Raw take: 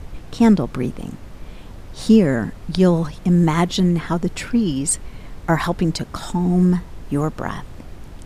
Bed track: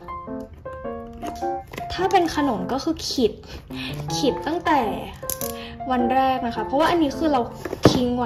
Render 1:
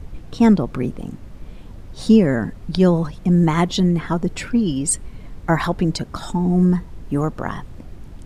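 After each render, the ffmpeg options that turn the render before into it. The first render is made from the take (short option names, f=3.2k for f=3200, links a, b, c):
-af "afftdn=nr=6:nf=-38"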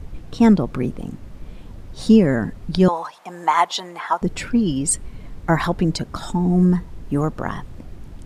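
-filter_complex "[0:a]asettb=1/sr,asplit=3[a][b][c];[a]atrim=end=2.884[d];[b]atrim=start=2.88:end=4.22,asetpts=PTS-STARTPTS,afade=t=in:d=0.004:c=qsin,afade=t=out:st=1.336:d=0.004:c=qsin,highpass=f=870:t=q:w=2.8[e];[c]atrim=start=4.216[f];[d][e]acrossfade=d=0.004:c1=hsin:c2=qsin[g];[g][f]acrossfade=d=0.004:c1=qsin:c2=hsin"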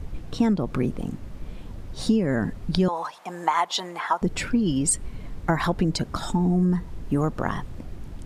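-af "acompressor=threshold=-18dB:ratio=6"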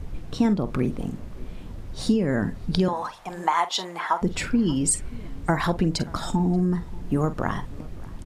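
-filter_complex "[0:a]asplit=2[a][b];[b]adelay=47,volume=-13.5dB[c];[a][c]amix=inputs=2:normalize=0,asplit=2[d][e];[e]adelay=583.1,volume=-22dB,highshelf=f=4k:g=-13.1[f];[d][f]amix=inputs=2:normalize=0"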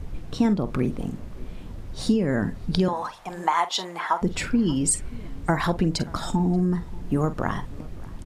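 -af anull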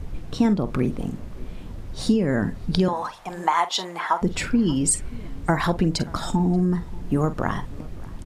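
-af "volume=1.5dB"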